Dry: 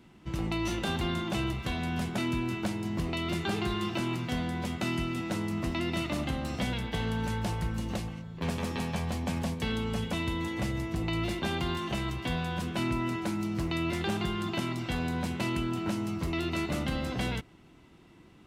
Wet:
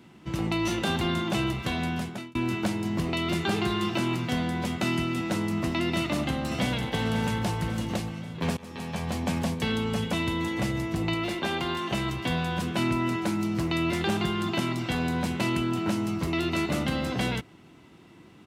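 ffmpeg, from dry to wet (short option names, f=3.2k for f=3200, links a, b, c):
-filter_complex "[0:a]asplit=2[a][b];[b]afade=t=in:st=5.97:d=0.01,afade=t=out:st=6.89:d=0.01,aecho=0:1:540|1080|1620|2160|2700|3240|3780:0.375837|0.206711|0.113691|0.0625299|0.0343915|0.0189153|0.0104034[c];[a][c]amix=inputs=2:normalize=0,asettb=1/sr,asplit=3[d][e][f];[d]atrim=end=11.144[g];[e]atrim=start=11.14:end=11.92,asetpts=PTS-STARTPTS,afade=t=in:d=0.004:c=qsin,afade=t=out:st=0.776:d=0.004:c=qsin,bass=f=250:g=-7,treble=f=4k:g=-3[h];[f]atrim=start=11.916[i];[g][h]acrossfade=d=0.004:c1=hsin:c2=qsin[j];[j][i]acrossfade=d=0.004:c1=qsin:c2=hsin,asplit=3[k][l][m];[k]atrim=end=2.35,asetpts=PTS-STARTPTS,afade=t=out:st=1.84:d=0.51[n];[l]atrim=start=2.35:end=8.57,asetpts=PTS-STARTPTS,afade=t=in:d=0.004:c=hsin,afade=t=out:st=6.216:d=0.004:c=hsin:silence=0.0841395[o];[m]atrim=start=8.57,asetpts=PTS-STARTPTS,afade=t=in:d=0.62:silence=0.0841395[p];[n][o][p]concat=n=3:v=0:a=1,highpass=91,volume=4.5dB"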